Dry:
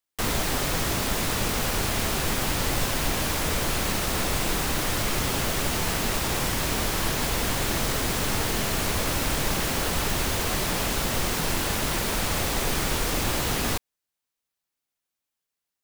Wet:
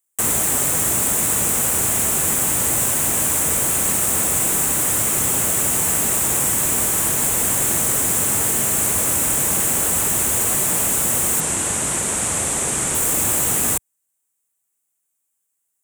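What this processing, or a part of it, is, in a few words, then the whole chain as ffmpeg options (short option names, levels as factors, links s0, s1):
budget condenser microphone: -filter_complex "[0:a]highpass=84,highshelf=f=6200:t=q:w=3:g=9.5,asettb=1/sr,asplit=3[s0][s1][s2];[s0]atrim=end=11.404[s3];[s1]atrim=start=11.4:end=12.95,asetpts=PTS-STARTPTS,afade=t=in:d=0.004:c=qsin,afade=t=out:st=1.546:d=0.004:c=qsin,lowpass=f=9600:w=0.5412,lowpass=f=9600:w=1.3066[s4];[s2]atrim=start=12.946[s5];[s3][s4]acrossfade=d=0.004:c1=hsin:c2=qsin[s6];[s6][s5]acrossfade=d=0.004:c1=qsin:c2=hsin,volume=1.19"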